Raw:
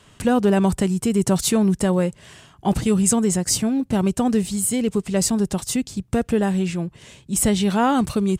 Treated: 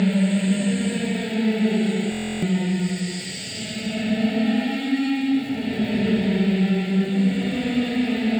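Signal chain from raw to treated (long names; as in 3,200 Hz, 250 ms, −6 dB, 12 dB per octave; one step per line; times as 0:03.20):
each half-wave held at its own peak
parametric band 1,500 Hz −3.5 dB 2.2 octaves
downward compressor 5 to 1, threshold −28 dBFS, peak gain reduction 16 dB
parametric band 430 Hz +3 dB 0.28 octaves
phaser with its sweep stopped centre 2,600 Hz, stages 4
convolution reverb RT60 0.10 s, pre-delay 31 ms, DRR 3 dB
extreme stretch with random phases 6.2×, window 0.25 s, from 0:02.99
elliptic low-pass filter 8,100 Hz, stop band 40 dB
centre clipping without the shift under −44.5 dBFS
high-pass filter 250 Hz 12 dB per octave
buffer that repeats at 0:02.10, samples 1,024, times 13
level +2 dB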